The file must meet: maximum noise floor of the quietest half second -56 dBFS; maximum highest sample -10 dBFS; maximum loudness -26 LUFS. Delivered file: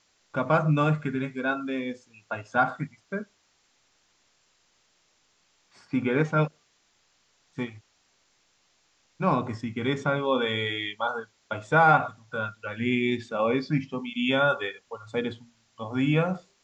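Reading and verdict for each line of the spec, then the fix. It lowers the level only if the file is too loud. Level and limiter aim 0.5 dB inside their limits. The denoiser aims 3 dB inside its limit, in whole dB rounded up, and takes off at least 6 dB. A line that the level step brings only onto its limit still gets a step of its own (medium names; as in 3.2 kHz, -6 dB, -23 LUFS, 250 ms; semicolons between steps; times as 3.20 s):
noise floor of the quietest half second -68 dBFS: pass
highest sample -7.5 dBFS: fail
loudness -27.0 LUFS: pass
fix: peak limiter -10.5 dBFS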